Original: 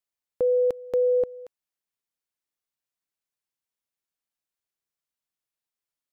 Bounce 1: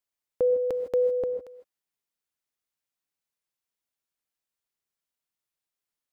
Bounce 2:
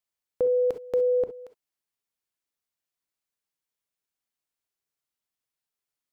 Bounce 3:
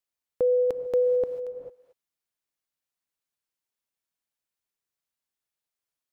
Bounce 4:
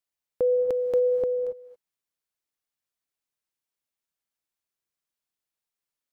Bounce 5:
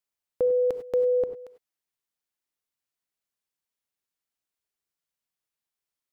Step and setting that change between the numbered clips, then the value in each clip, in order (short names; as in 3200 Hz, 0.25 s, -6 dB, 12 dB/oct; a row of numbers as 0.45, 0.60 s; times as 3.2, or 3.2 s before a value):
non-linear reverb, gate: 180, 80, 470, 300, 120 ms